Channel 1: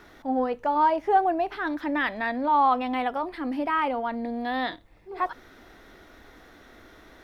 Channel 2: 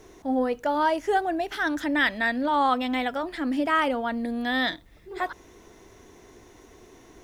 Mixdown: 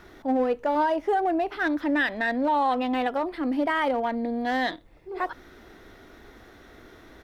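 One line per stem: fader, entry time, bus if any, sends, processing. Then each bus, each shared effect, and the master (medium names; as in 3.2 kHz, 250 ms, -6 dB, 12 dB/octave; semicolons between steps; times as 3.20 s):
0.0 dB, 0.00 s, no send, none
-1.5 dB, 0.6 ms, polarity flipped, no send, local Wiener filter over 41 samples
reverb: none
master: peak limiter -16.5 dBFS, peak gain reduction 8 dB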